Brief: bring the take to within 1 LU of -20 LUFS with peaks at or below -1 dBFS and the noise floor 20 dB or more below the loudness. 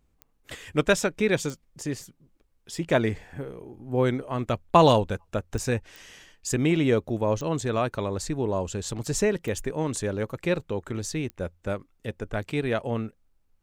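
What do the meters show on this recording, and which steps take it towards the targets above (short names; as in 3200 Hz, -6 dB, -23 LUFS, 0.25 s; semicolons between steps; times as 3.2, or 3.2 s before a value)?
clicks 7; loudness -27.0 LUFS; peak -3.5 dBFS; loudness target -20.0 LUFS
-> de-click; gain +7 dB; limiter -1 dBFS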